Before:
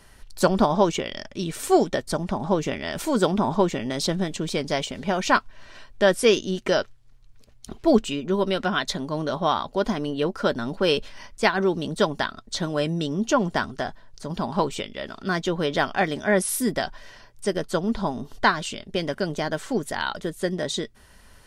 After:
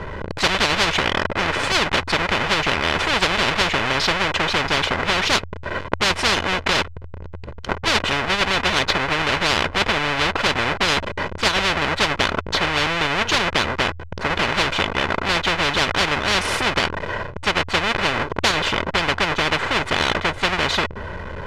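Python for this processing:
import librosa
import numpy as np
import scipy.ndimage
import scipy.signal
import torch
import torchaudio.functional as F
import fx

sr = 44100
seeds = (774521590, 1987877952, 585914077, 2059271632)

y = fx.halfwave_hold(x, sr)
y = scipy.signal.sosfilt(scipy.signal.butter(2, 1800.0, 'lowpass', fs=sr, output='sos'), y)
y = fx.peak_eq(y, sr, hz=84.0, db=15.0, octaves=0.31)
y = y + 0.51 * np.pad(y, (int(2.0 * sr / 1000.0), 0))[:len(y)]
y = fx.spectral_comp(y, sr, ratio=10.0)
y = y * librosa.db_to_amplitude(1.5)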